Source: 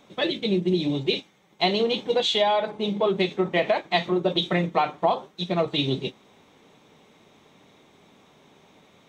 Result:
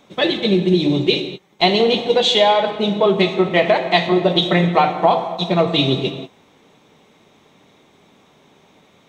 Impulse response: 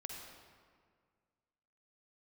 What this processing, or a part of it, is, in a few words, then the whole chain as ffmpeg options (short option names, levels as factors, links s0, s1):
keyed gated reverb: -filter_complex "[0:a]asplit=3[s0][s1][s2];[1:a]atrim=start_sample=2205[s3];[s1][s3]afir=irnorm=-1:irlink=0[s4];[s2]apad=whole_len=400695[s5];[s4][s5]sidechaingate=range=0.0224:threshold=0.00398:ratio=16:detection=peak,volume=1.19[s6];[s0][s6]amix=inputs=2:normalize=0,volume=1.41"